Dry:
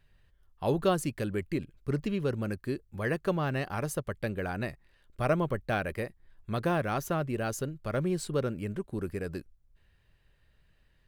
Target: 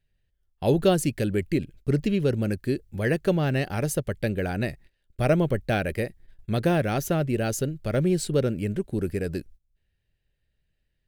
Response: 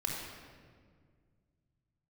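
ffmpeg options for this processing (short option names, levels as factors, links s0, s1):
-af "agate=range=0.158:threshold=0.002:ratio=16:detection=peak,equalizer=f=1100:w=1.9:g=-12.5,volume=2.37"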